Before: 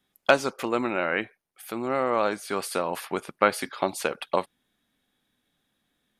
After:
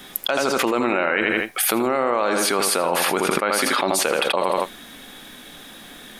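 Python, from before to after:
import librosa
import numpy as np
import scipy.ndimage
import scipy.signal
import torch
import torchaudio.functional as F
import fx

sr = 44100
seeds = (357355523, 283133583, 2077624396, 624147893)

y = fx.peak_eq(x, sr, hz=93.0, db=-10.0, octaves=1.8)
y = fx.echo_feedback(y, sr, ms=81, feedback_pct=27, wet_db=-10.0)
y = fx.env_flatten(y, sr, amount_pct=100)
y = F.gain(torch.from_numpy(y), -6.0).numpy()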